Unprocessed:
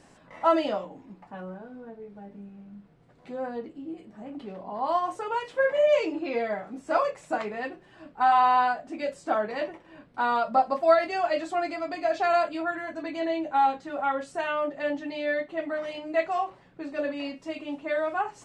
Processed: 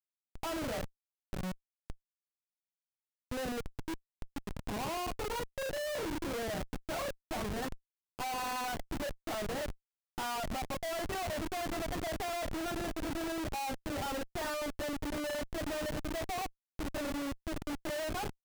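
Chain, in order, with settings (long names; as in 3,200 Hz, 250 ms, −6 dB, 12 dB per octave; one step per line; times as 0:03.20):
spectral magnitudes quantised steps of 15 dB
downward compressor 1.5 to 1, threshold −28 dBFS, peak gain reduction 5 dB
comparator with hysteresis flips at −33.5 dBFS
level −5 dB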